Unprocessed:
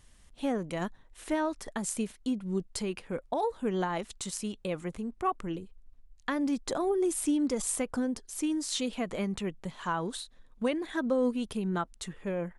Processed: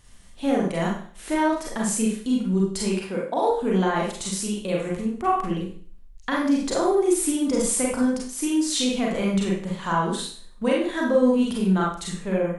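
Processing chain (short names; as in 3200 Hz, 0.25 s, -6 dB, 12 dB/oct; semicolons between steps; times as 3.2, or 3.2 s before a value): 3–3.5 HPF 180 Hz; Schroeder reverb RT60 0.48 s, combs from 32 ms, DRR -3.5 dB; gain +3.5 dB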